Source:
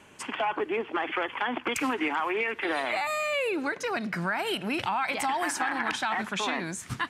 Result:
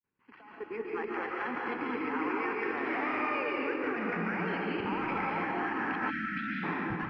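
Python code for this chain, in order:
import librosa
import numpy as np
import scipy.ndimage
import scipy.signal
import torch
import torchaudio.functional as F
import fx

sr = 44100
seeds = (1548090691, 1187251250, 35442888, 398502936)

y = fx.fade_in_head(x, sr, length_s=1.17)
y = fx.low_shelf(y, sr, hz=310.0, db=3.0)
y = np.repeat(scipy.signal.resample_poly(y, 1, 6), 6)[:len(y)]
y = scipy.signal.sosfilt(scipy.signal.butter(4, 2400.0, 'lowpass', fs=sr, output='sos'), y)
y = fx.peak_eq(y, sr, hz=640.0, db=-14.5, octaves=0.3)
y = fx.echo_diffused(y, sr, ms=994, feedback_pct=54, wet_db=-8)
y = fx.level_steps(y, sr, step_db=17)
y = fx.rev_freeverb(y, sr, rt60_s=1.9, hf_ratio=0.75, predelay_ms=100, drr_db=-3.5)
y = fx.spec_erase(y, sr, start_s=6.1, length_s=0.53, low_hz=340.0, high_hz=1300.0)
y = y * 10.0 ** (-3.0 / 20.0)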